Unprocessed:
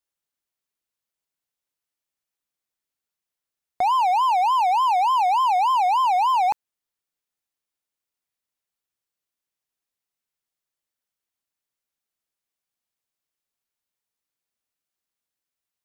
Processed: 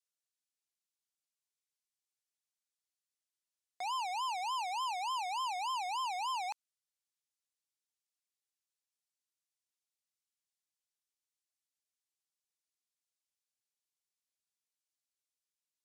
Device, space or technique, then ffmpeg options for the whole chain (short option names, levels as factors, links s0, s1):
piezo pickup straight into a mixer: -af "lowpass=7400,aderivative"